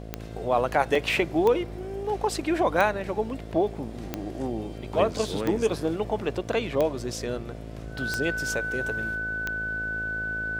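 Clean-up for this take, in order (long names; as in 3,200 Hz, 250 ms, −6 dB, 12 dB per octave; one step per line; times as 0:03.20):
click removal
hum removal 54.7 Hz, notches 13
notch filter 1,500 Hz, Q 30
repair the gap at 0:00.95, 3.6 ms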